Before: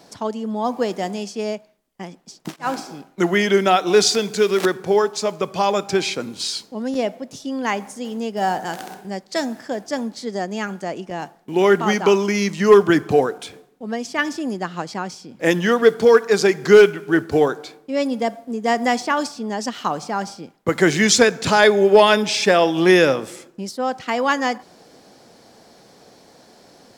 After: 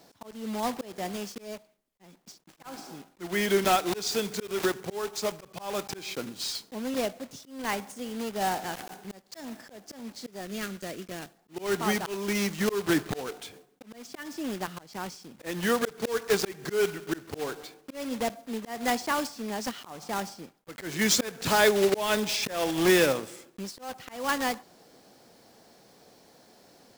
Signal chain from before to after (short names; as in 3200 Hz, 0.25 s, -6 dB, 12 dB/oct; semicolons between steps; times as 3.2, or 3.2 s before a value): block floating point 3-bit; 10.41–11.38 bell 860 Hz -12.5 dB 0.57 oct; auto swell 0.255 s; gain -8 dB